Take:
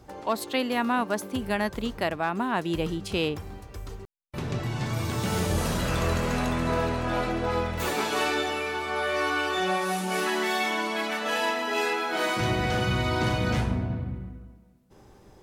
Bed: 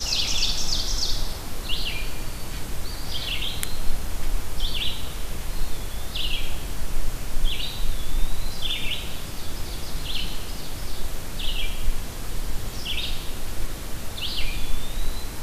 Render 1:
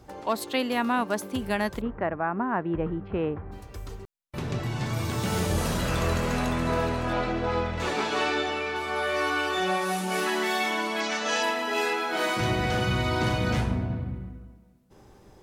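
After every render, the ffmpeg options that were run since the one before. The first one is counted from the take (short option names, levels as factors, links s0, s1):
-filter_complex "[0:a]asplit=3[s0][s1][s2];[s0]afade=t=out:st=1.8:d=0.02[s3];[s1]lowpass=f=1800:w=0.5412,lowpass=f=1800:w=1.3066,afade=t=in:st=1.8:d=0.02,afade=t=out:st=3.51:d=0.02[s4];[s2]afade=t=in:st=3.51:d=0.02[s5];[s3][s4][s5]amix=inputs=3:normalize=0,asettb=1/sr,asplit=3[s6][s7][s8];[s6]atrim=end=7.134[s9];[s7]atrim=start=7.13:end=8.76,asetpts=PTS-STARTPTS,afade=t=in:d=0.004:c=qsin,afade=t=out:st=1.626:d=0.004:c=qsin,lowpass=5800[s10];[s8]atrim=start=8.756[s11];[s9][s10]acrossfade=d=0.004:c1=hsin:c2=qsin[s12];[s12][s11]acrossfade=d=0.004:c1=qsin:c2=hsin,asettb=1/sr,asplit=3[s13][s14][s15];[s13]atrim=end=11.004[s16];[s14]atrim=start=11:end=11.43,asetpts=PTS-STARTPTS,afade=t=in:d=0.004:c=qsin,afade=t=out:st=0.426:d=0.004:c=qsin,lowpass=f=6200:t=q:w=3[s17];[s15]atrim=start=11.426[s18];[s16][s17]acrossfade=d=0.004:c1=hsin:c2=qsin[s19];[s19][s18]acrossfade=d=0.004:c1=qsin:c2=hsin"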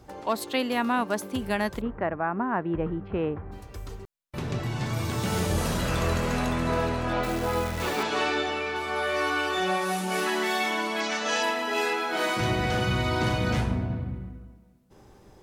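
-filter_complex "[0:a]asettb=1/sr,asplit=3[s0][s1][s2];[s0]atrim=end=7.234[s3];[s1]atrim=start=7.23:end=8.03,asetpts=PTS-STARTPTS,afade=t=in:d=0.004:c=qsin,afade=t=out:st=0.796:d=0.004:c=qsin,acrusher=bits=7:dc=4:mix=0:aa=0.000001[s4];[s2]atrim=start=8.026[s5];[s3][s4]acrossfade=d=0.004:c1=hsin:c2=qsin[s6];[s6][s5]acrossfade=d=0.004:c1=qsin:c2=hsin"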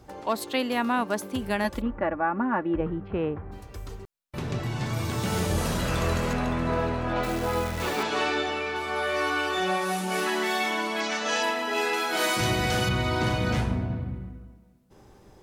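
-filter_complex "[0:a]asettb=1/sr,asplit=3[s0][s1][s2];[s0]atrim=end=1.644[s3];[s1]atrim=start=1.64:end=2.81,asetpts=PTS-STARTPTS,afade=t=in:d=0.004:c=qsin,afade=t=out:st=1.166:d=0.004:c=qsin,aecho=1:1:3.5:0.65,atrim=end_sample=51597[s4];[s2]atrim=start=2.806[s5];[s3][s4]acrossfade=d=0.004:c1=hsin:c2=qsin[s6];[s6][s5]acrossfade=d=0.004:c1=qsin:c2=hsin,asettb=1/sr,asplit=3[s7][s8][s9];[s7]atrim=end=6.334[s10];[s8]atrim=start=6.33:end=7.16,asetpts=PTS-STARTPTS,afade=t=in:d=0.004:c=qsin,afade=t=out:st=0.826:d=0.004:c=qsin,highshelf=f=4300:g=-10[s11];[s9]atrim=start=7.156[s12];[s10][s11]acrossfade=d=0.004:c1=hsin:c2=qsin[s13];[s13][s12]acrossfade=d=0.004:c1=qsin:c2=hsin,asettb=1/sr,asplit=3[s14][s15][s16];[s14]atrim=end=11.934[s17];[s15]atrim=start=11.93:end=12.89,asetpts=PTS-STARTPTS,afade=t=in:d=0.004:c=qsin,afade=t=out:st=0.956:d=0.004:c=qsin,highshelf=f=4300:g=11[s18];[s16]atrim=start=12.886[s19];[s17][s18]acrossfade=d=0.004:c1=hsin:c2=qsin[s20];[s20][s19]acrossfade=d=0.004:c1=qsin:c2=hsin"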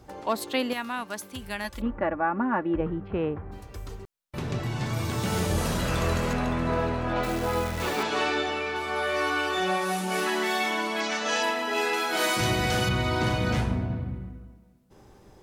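-filter_complex "[0:a]asettb=1/sr,asplit=3[s0][s1][s2];[s0]atrim=end=0.734[s3];[s1]atrim=start=0.73:end=1.8,asetpts=PTS-STARTPTS,afade=t=in:d=0.004:c=qsin,afade=t=out:st=1.066:d=0.004:c=qsin,equalizer=f=350:w=0.34:g=-11[s4];[s2]atrim=start=1.796[s5];[s3][s4]acrossfade=d=0.004:c1=hsin:c2=qsin[s6];[s6][s5]acrossfade=d=0.004:c1=qsin:c2=hsin"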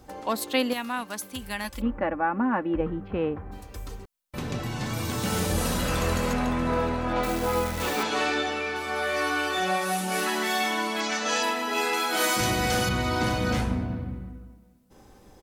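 -af "highshelf=f=7000:g=6,aecho=1:1:3.9:0.33"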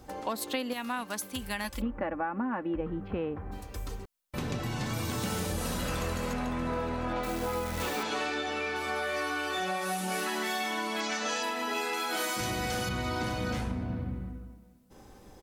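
-af "acompressor=threshold=0.0355:ratio=6"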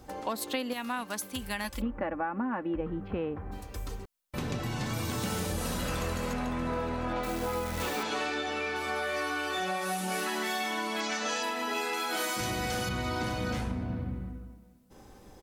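-af anull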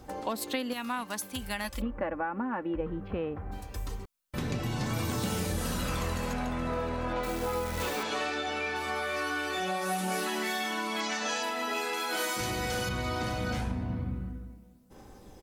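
-af "aphaser=in_gain=1:out_gain=1:delay=2.3:decay=0.2:speed=0.2:type=triangular"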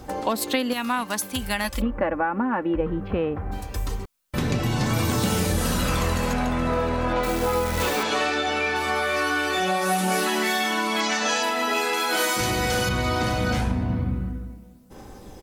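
-af "volume=2.66"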